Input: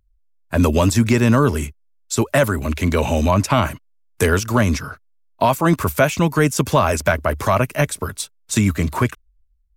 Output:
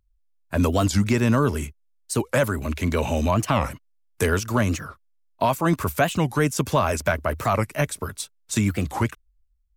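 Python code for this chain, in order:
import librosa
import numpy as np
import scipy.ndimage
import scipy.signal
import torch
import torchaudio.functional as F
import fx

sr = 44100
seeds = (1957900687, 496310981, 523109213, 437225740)

y = fx.record_warp(x, sr, rpm=45.0, depth_cents=250.0)
y = F.gain(torch.from_numpy(y), -5.0).numpy()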